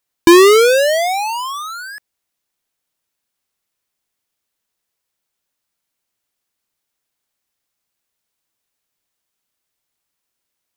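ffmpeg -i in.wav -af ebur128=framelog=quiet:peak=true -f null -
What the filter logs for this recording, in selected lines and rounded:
Integrated loudness:
  I:         -11.3 LUFS
  Threshold: -22.8 LUFS
Loudness range:
  LRA:        21.2 LU
  Threshold: -39.7 LUFS
  LRA low:   -35.7 LUFS
  LRA high:  -14.4 LUFS
True peak:
  Peak:       -2.7 dBFS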